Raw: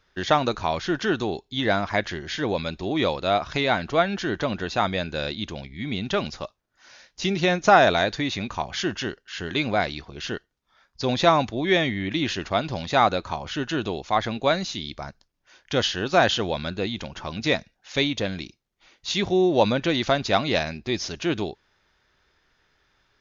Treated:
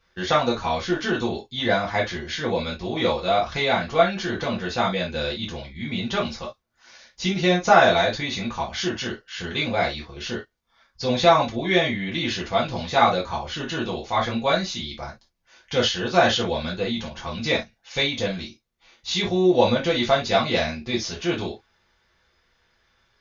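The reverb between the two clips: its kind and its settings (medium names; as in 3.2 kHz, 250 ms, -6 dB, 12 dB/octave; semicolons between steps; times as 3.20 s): gated-style reverb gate 90 ms falling, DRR -5 dB; trim -5 dB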